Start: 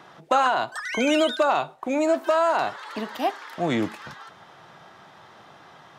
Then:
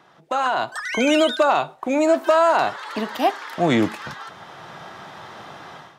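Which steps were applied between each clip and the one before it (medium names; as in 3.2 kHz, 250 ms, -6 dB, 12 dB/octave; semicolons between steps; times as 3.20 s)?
level rider gain up to 15.5 dB; trim -5.5 dB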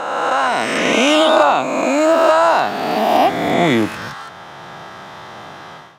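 reverse spectral sustain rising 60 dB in 2.02 s; trim +1.5 dB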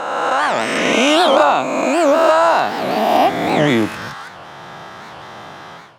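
warped record 78 rpm, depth 250 cents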